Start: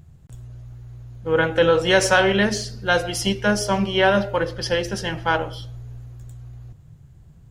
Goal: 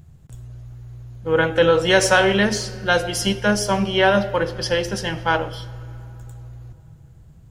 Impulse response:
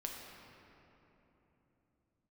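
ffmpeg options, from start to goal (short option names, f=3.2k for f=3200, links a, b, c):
-filter_complex "[0:a]asplit=2[a][b];[1:a]atrim=start_sample=2205,highshelf=f=4.4k:g=11[c];[b][c]afir=irnorm=-1:irlink=0,volume=-14.5dB[d];[a][d]amix=inputs=2:normalize=0"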